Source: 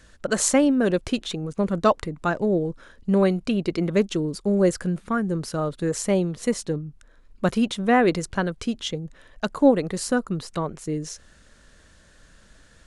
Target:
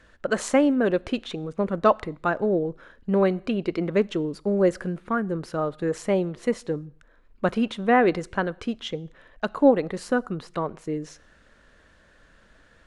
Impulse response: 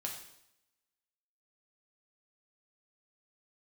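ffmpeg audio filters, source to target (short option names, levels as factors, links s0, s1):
-filter_complex "[0:a]bass=f=250:g=-6,treble=f=4000:g=-14,asplit=2[s0][s1];[1:a]atrim=start_sample=2205,afade=t=out:st=0.3:d=0.01,atrim=end_sample=13671[s2];[s1][s2]afir=irnorm=-1:irlink=0,volume=0.119[s3];[s0][s3]amix=inputs=2:normalize=0"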